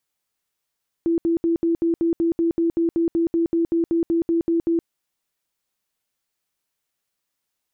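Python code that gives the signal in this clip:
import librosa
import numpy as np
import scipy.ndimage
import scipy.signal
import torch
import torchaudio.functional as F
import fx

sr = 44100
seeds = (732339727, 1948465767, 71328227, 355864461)

y = fx.tone_burst(sr, hz=334.0, cycles=40, every_s=0.19, bursts=20, level_db=-16.5)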